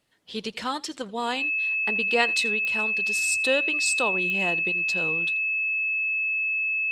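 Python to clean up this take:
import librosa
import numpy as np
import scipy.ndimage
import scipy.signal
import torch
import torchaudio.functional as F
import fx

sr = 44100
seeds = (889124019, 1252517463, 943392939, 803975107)

y = fx.fix_declick_ar(x, sr, threshold=10.0)
y = fx.notch(y, sr, hz=2600.0, q=30.0)
y = fx.fix_echo_inverse(y, sr, delay_ms=83, level_db=-23.0)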